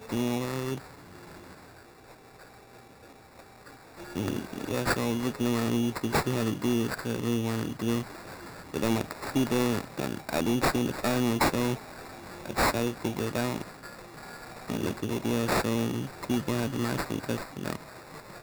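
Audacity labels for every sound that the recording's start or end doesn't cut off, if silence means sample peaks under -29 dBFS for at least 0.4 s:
4.160000	8.020000	sound
8.740000	11.750000	sound
12.460000	13.620000	sound
14.700000	17.760000	sound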